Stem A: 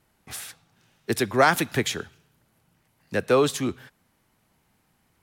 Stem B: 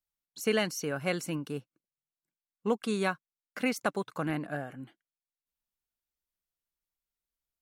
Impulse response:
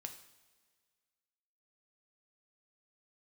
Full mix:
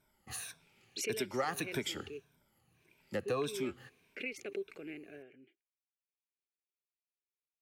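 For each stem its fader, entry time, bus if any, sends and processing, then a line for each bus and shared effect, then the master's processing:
−9.5 dB, 0.00 s, send −19 dB, rippled gain that drifts along the octave scale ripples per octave 1.6, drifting −1.7 Hz, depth 14 dB
−1.0 dB, 0.60 s, no send, pair of resonant band-passes 980 Hz, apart 2.6 octaves; background raised ahead of every attack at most 89 dB per second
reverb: on, pre-delay 3 ms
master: downward compressor 3 to 1, threshold −34 dBFS, peak gain reduction 11.5 dB

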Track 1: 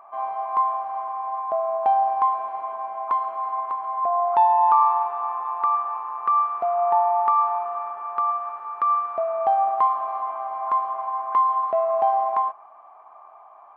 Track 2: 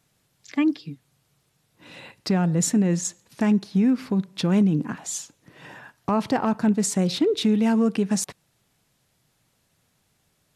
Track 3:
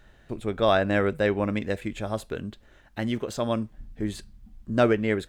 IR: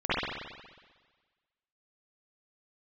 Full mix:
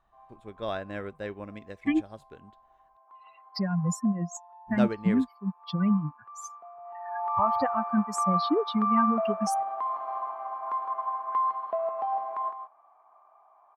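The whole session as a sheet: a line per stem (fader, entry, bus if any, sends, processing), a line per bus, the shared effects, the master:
0:06.80 −13 dB → 0:07.36 0 dB, 0.00 s, no send, echo send −7.5 dB, high-pass filter 150 Hz 24 dB per octave; parametric band 2,600 Hz −2 dB; brickwall limiter −19 dBFS, peak gain reduction 12 dB; automatic ducking −8 dB, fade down 0.80 s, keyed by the third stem
+1.5 dB, 1.30 s, no send, no echo send, spectral dynamics exaggerated over time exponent 3; notch filter 2,600 Hz, Q 5; multiband upward and downward compressor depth 70%
−7.5 dB, 0.00 s, muted 0:02.97–0:04.67, no send, no echo send, high-shelf EQ 8,700 Hz −5.5 dB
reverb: not used
echo: single-tap delay 160 ms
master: expander for the loud parts 1.5 to 1, over −43 dBFS

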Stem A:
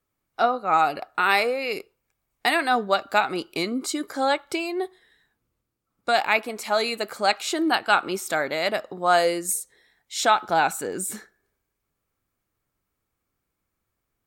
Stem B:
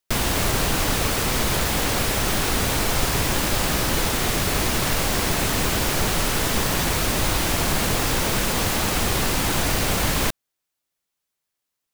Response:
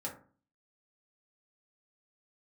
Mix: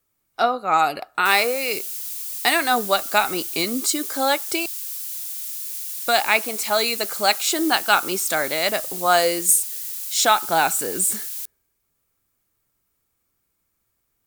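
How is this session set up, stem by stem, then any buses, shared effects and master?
+1.0 dB, 0.00 s, muted 0:04.66–0:05.57, no send, no processing
−15.0 dB, 1.15 s, no send, high-pass filter 1,500 Hz 6 dB per octave; first difference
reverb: not used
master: high-shelf EQ 4,300 Hz +10.5 dB

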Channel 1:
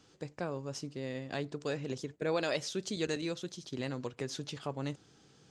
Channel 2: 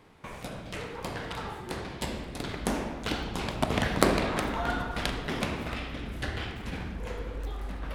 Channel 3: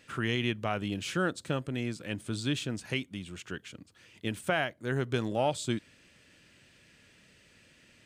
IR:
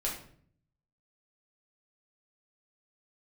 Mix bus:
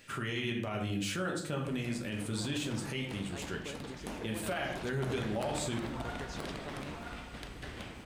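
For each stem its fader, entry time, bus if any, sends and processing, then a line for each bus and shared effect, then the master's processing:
−7.5 dB, 2.00 s, bus A, no send, no echo send, no processing
−12.0 dB, 1.40 s, no bus, no send, echo send −4.5 dB, no processing
−3.0 dB, 0.00 s, bus A, send −3.5 dB, no echo send, high-shelf EQ 10,000 Hz +9 dB
bus A: 0.0 dB, downward compressor, threshold −40 dBFS, peak gain reduction 13 dB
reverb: on, RT60 0.55 s, pre-delay 5 ms
echo: single-tap delay 977 ms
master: brickwall limiter −25.5 dBFS, peak gain reduction 8.5 dB

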